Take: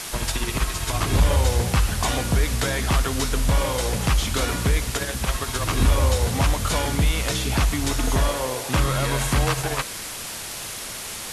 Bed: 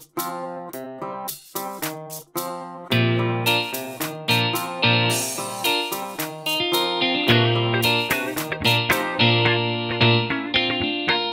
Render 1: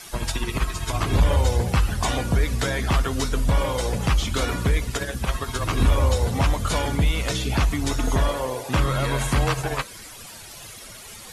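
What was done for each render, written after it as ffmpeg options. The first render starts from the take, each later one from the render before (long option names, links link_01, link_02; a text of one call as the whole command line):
ffmpeg -i in.wav -af "afftdn=noise_reduction=12:noise_floor=-33" out.wav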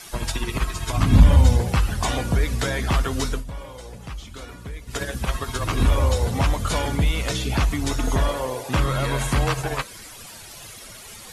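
ffmpeg -i in.wav -filter_complex "[0:a]asettb=1/sr,asplit=3[link_01][link_02][link_03];[link_01]atrim=end=0.974[link_04];[link_02]atrim=start=0.97:end=1.57,asetpts=PTS-STARTPTS,afade=type=in:duration=0.004:curve=qsin,afade=type=out:start_time=0.596:duration=0.004:curve=qsin,lowshelf=frequency=300:width_type=q:width=3:gain=6[link_05];[link_03]atrim=start=1.566[link_06];[link_04][link_05]acrossfade=duration=0.004:curve1=hsin:curve2=qsin[link_07];[link_07][link_06]acrossfade=duration=0.004:curve1=qsin:curve2=hsin,asplit=3[link_08][link_09][link_10];[link_08]atrim=end=3.44,asetpts=PTS-STARTPTS,afade=type=out:start_time=3.31:duration=0.13:silence=0.199526[link_11];[link_09]atrim=start=3.44:end=4.86,asetpts=PTS-STARTPTS,volume=-14dB[link_12];[link_10]atrim=start=4.86,asetpts=PTS-STARTPTS,afade=type=in:duration=0.13:silence=0.199526[link_13];[link_11][link_12][link_13]concat=n=3:v=0:a=1" out.wav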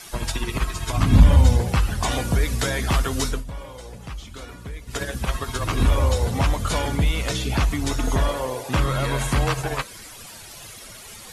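ffmpeg -i in.wav -filter_complex "[0:a]asettb=1/sr,asplit=3[link_01][link_02][link_03];[link_01]atrim=end=2.114[link_04];[link_02]atrim=start=2.11:end=3.31,asetpts=PTS-STARTPTS,afade=type=in:duration=0.004:curve=qsin,afade=type=out:start_time=1.196:duration=0.004:curve=qsin,highshelf=frequency=5300:gain=5.5[link_05];[link_03]atrim=start=3.306[link_06];[link_04][link_05]acrossfade=duration=0.004:curve1=hsin:curve2=qsin[link_07];[link_07][link_06]acrossfade=duration=0.004:curve1=qsin:curve2=hsin" out.wav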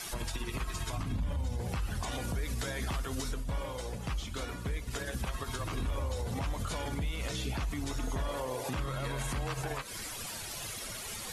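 ffmpeg -i in.wav -af "acompressor=threshold=-28dB:ratio=4,alimiter=level_in=2.5dB:limit=-24dB:level=0:latency=1:release=89,volume=-2.5dB" out.wav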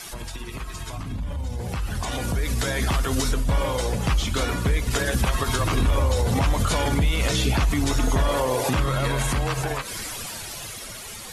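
ffmpeg -i in.wav -filter_complex "[0:a]asplit=2[link_01][link_02];[link_02]alimiter=level_in=13.5dB:limit=-24dB:level=0:latency=1,volume=-13.5dB,volume=-2dB[link_03];[link_01][link_03]amix=inputs=2:normalize=0,dynaudnorm=framelen=430:gausssize=11:maxgain=11.5dB" out.wav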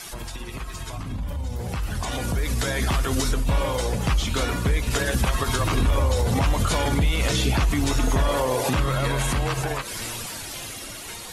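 ffmpeg -i in.wav -i bed.wav -filter_complex "[1:a]volume=-22.5dB[link_01];[0:a][link_01]amix=inputs=2:normalize=0" out.wav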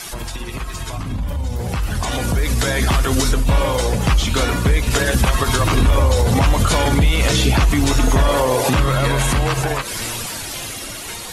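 ffmpeg -i in.wav -af "volume=6.5dB" out.wav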